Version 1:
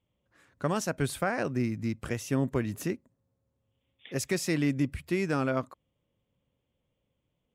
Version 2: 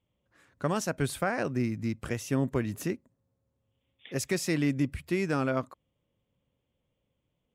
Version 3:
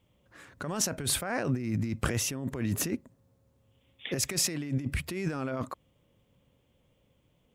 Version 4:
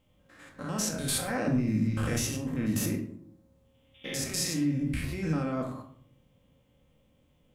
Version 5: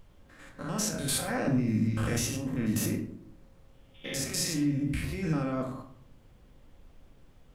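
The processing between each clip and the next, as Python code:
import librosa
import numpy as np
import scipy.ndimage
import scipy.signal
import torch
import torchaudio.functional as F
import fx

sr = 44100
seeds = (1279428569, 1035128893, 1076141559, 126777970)

y1 = x
y2 = fx.over_compress(y1, sr, threshold_db=-36.0, ratio=-1.0)
y2 = y2 * 10.0 ** (4.5 / 20.0)
y3 = fx.spec_steps(y2, sr, hold_ms=100)
y3 = fx.room_shoebox(y3, sr, seeds[0], volume_m3=730.0, walls='furnished', distance_m=2.1)
y4 = fx.dmg_noise_colour(y3, sr, seeds[1], colour='brown', level_db=-54.0)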